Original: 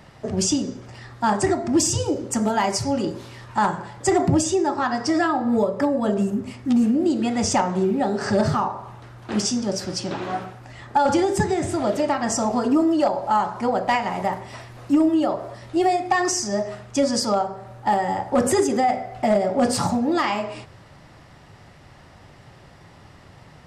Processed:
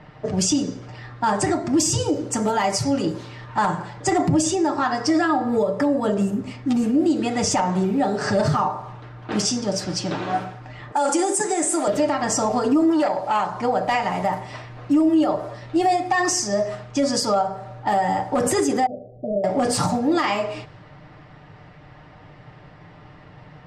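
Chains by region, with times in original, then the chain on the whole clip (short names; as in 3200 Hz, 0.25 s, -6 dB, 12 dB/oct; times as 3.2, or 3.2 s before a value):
10.92–11.88 HPF 290 Hz 24 dB/oct + resonant high shelf 6000 Hz +12 dB, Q 1.5 + careless resampling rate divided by 2×, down none, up filtered
12.9–13.5 low shelf 150 Hz -7.5 dB + core saturation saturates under 740 Hz
18.86–19.44 elliptic low-pass 570 Hz + low shelf 420 Hz -6.5 dB
whole clip: comb 6.6 ms, depth 49%; low-pass opened by the level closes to 2600 Hz, open at -19.5 dBFS; limiter -13 dBFS; gain +1.5 dB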